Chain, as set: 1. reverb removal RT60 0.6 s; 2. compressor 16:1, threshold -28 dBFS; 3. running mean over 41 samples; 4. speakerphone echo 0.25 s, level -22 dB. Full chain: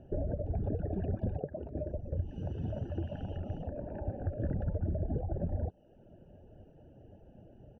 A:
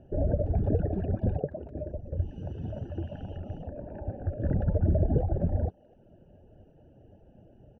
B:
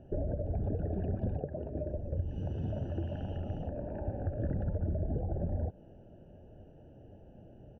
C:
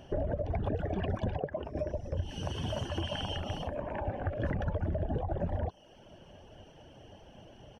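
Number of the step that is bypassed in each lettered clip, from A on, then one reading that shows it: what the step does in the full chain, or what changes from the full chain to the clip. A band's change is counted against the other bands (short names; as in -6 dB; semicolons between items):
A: 2, mean gain reduction 2.5 dB; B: 1, crest factor change -1.5 dB; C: 3, 2 kHz band +12.5 dB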